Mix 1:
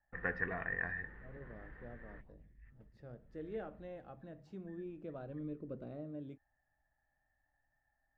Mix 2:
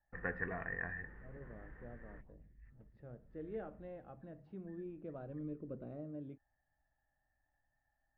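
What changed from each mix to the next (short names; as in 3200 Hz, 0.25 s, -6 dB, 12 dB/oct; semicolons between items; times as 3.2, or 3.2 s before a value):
master: add air absorption 410 m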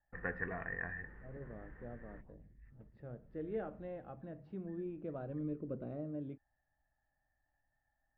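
second voice +4.0 dB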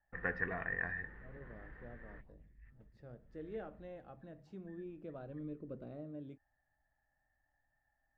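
second voice -5.5 dB; master: remove air absorption 410 m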